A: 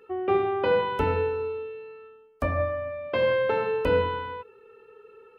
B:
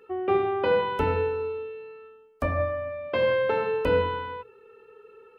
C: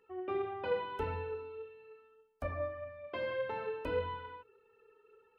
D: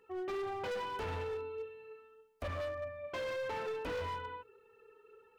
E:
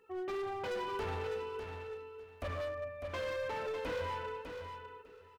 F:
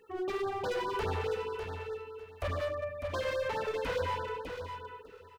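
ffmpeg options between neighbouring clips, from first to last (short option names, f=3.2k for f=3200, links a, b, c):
-af "bandreject=f=60:t=h:w=6,bandreject=f=120:t=h:w=6"
-af "flanger=delay=1:depth=2.3:regen=37:speed=1.7:shape=sinusoidal,volume=-8.5dB"
-af "asoftclip=type=hard:threshold=-39.5dB,volume=3.5dB"
-af "aecho=1:1:601|1202|1803:0.447|0.0759|0.0129"
-af "afftfilt=real='re*(1-between(b*sr/1024,230*pow(2700/230,0.5+0.5*sin(2*PI*4.8*pts/sr))/1.41,230*pow(2700/230,0.5+0.5*sin(2*PI*4.8*pts/sr))*1.41))':imag='im*(1-between(b*sr/1024,230*pow(2700/230,0.5+0.5*sin(2*PI*4.8*pts/sr))/1.41,230*pow(2700/230,0.5+0.5*sin(2*PI*4.8*pts/sr))*1.41))':win_size=1024:overlap=0.75,volume=5.5dB"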